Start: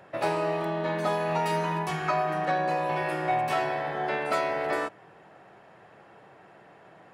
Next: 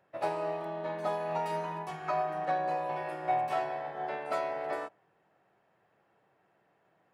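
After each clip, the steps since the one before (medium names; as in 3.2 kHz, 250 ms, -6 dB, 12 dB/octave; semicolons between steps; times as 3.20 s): dynamic bell 710 Hz, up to +7 dB, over -41 dBFS, Q 1; upward expansion 1.5:1, over -35 dBFS; trim -8.5 dB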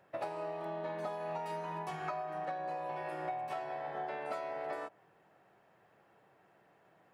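compression 10:1, threshold -40 dBFS, peak gain reduction 15 dB; trim +4 dB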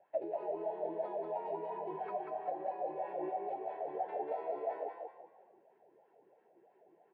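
wah-wah 3 Hz 340–1100 Hz, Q 7.1; static phaser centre 2.8 kHz, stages 4; frequency-shifting echo 188 ms, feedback 34%, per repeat +34 Hz, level -4 dB; trim +13 dB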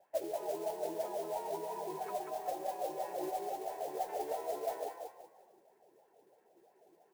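modulation noise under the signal 16 dB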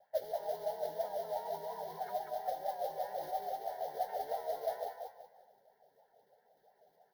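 vibrato 4.2 Hz 51 cents; static phaser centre 1.7 kHz, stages 8; trim +1.5 dB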